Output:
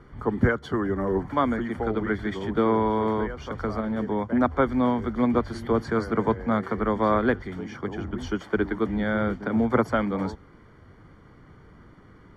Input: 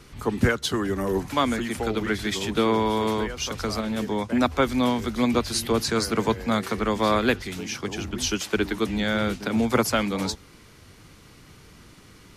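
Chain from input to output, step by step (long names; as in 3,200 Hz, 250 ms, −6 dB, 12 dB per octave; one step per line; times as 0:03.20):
Savitzky-Golay smoothing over 41 samples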